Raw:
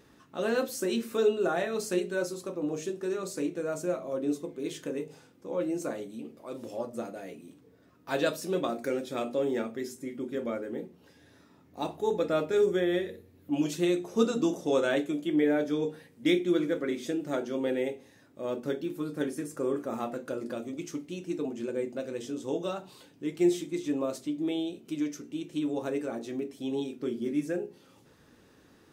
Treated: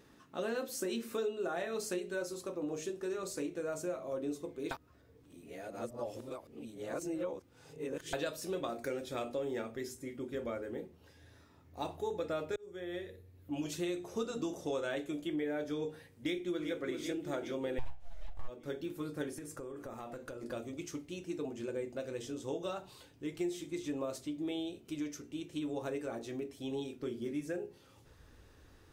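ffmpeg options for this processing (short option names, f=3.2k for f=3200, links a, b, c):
-filter_complex "[0:a]asplit=2[a][b];[b]afade=t=in:st=16.09:d=0.01,afade=t=out:st=16.74:d=0.01,aecho=0:1:390|780|1170|1560|1950|2340|2730|3120:0.298538|0.19405|0.126132|0.0819861|0.0532909|0.0346391|0.0225154|0.014635[c];[a][c]amix=inputs=2:normalize=0,asplit=3[d][e][f];[d]afade=t=out:st=17.78:d=0.02[g];[e]aeval=exprs='abs(val(0))':c=same,afade=t=in:st=17.78:d=0.02,afade=t=out:st=18.47:d=0.02[h];[f]afade=t=in:st=18.47:d=0.02[i];[g][h][i]amix=inputs=3:normalize=0,asettb=1/sr,asplit=3[j][k][l];[j]atrim=end=19.354[m];[k]atrim=start=19.35:end=20.43,asetpts=PTS-STARTPTS,afade=t=in:d=0.004:c=qsin,afade=t=out:st=1.076:d=0.004:c=qsin,acompressor=threshold=-36dB:ratio=10:attack=3.2:release=140:knee=1:detection=peak[n];[l]atrim=start=20.426[o];[m][n]acrossfade=d=0.004:c1=hsin:c2=qsin[p];[p][o]acrossfade=d=0.004:c1=qsin:c2=hsin,asplit=4[q][r][s][t];[q]atrim=end=4.712[u];[r]atrim=start=4.708:end=8.132,asetpts=PTS-STARTPTS,areverse[v];[s]atrim=start=8.128:end=12.56,asetpts=PTS-STARTPTS,afade=t=out:st=4.428:d=0.004:c=hsin[w];[t]atrim=start=12.56,asetpts=PTS-STARTPTS,afade=t=in:d=1.5:c=qsin[x];[u][v]acrossfade=d=0.004:c1=hsin:c2=hsin[y];[w][x]concat=n=2:v=0:a=1[z];[y][z]acrossfade=d=0.004:c1=hsin:c2=hsin,asubboost=boost=11.5:cutoff=58,acompressor=threshold=-31dB:ratio=4,volume=-2.5dB"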